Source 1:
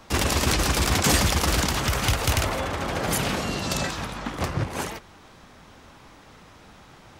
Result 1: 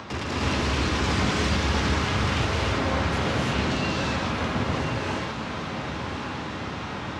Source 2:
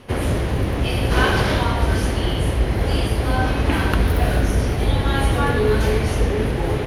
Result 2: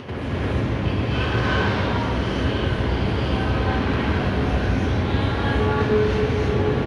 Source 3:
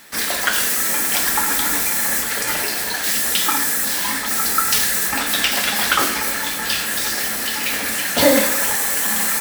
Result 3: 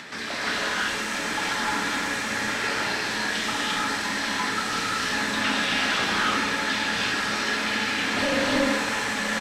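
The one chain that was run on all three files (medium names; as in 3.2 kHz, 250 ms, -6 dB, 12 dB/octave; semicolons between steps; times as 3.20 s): high-pass 71 Hz 24 dB/octave; peaking EQ 680 Hz -2.5 dB 0.77 oct; upward compressor, threshold -21 dBFS; modulation noise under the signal 32 dB; saturation -18 dBFS; distance through air 140 m; feedback comb 210 Hz, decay 1 s, mix 50%; on a send: echo that smears into a reverb 1100 ms, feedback 57%, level -8.5 dB; on the sum: gated-style reverb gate 370 ms rising, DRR -5 dB; resampled via 32 kHz; trim +1.5 dB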